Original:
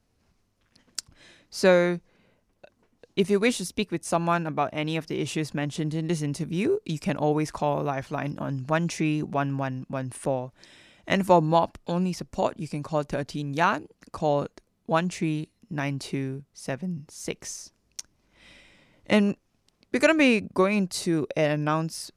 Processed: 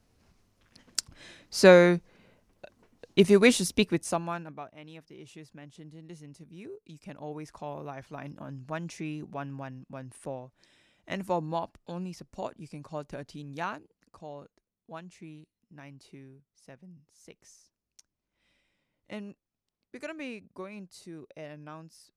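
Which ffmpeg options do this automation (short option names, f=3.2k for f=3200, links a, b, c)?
-af "volume=11.5dB,afade=t=out:st=3.89:d=0.33:silence=0.251189,afade=t=out:st=4.22:d=0.49:silence=0.298538,afade=t=in:st=6.84:d=1.32:silence=0.375837,afade=t=out:st=13.55:d=0.74:silence=0.375837"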